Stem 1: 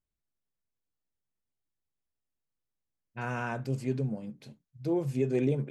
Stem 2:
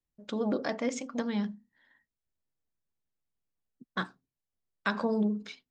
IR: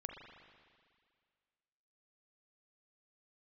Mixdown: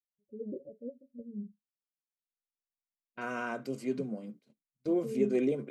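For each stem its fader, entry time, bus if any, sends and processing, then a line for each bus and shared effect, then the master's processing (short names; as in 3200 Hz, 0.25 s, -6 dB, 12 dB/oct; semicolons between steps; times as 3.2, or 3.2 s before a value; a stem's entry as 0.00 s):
0.0 dB, 0.00 s, no send, HPF 200 Hz 24 dB/oct; notch comb 860 Hz; gate -50 dBFS, range -21 dB
0.0 dB, 0.00 s, no send, per-bin expansion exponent 2; rippled Chebyshev low-pass 580 Hz, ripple 9 dB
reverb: off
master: dry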